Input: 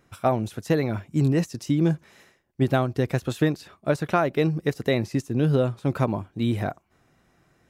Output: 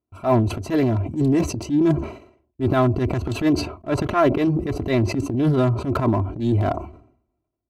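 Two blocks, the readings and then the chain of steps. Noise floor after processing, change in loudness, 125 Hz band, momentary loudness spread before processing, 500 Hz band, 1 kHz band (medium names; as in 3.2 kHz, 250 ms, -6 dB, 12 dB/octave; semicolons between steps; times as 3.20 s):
-79 dBFS, +3.5 dB, +3.0 dB, 5 LU, +3.0 dB, +3.5 dB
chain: local Wiener filter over 25 samples; gate -51 dBFS, range -29 dB; high-pass 58 Hz 12 dB/octave; bass shelf 93 Hz +10.5 dB; comb 3 ms, depth 76%; dynamic bell 1.1 kHz, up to +6 dB, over -40 dBFS, Q 2.9; in parallel at 0 dB: compression, threshold -28 dBFS, peak gain reduction 15 dB; on the sum: transient shaper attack -11 dB, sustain +9 dB; decay stretcher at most 96 dB/s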